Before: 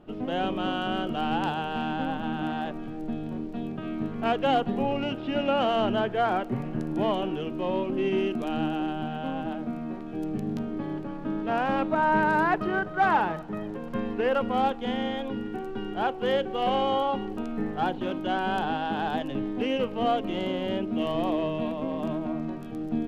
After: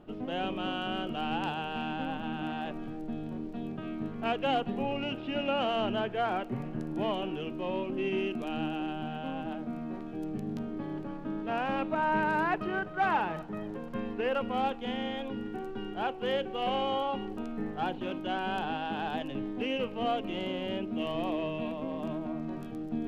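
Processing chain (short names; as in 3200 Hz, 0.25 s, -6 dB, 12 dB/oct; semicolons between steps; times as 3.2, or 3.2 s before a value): dynamic EQ 2600 Hz, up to +6 dB, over -51 dBFS, Q 3.3; reverse; upward compressor, threshold -27 dBFS; reverse; gain -5.5 dB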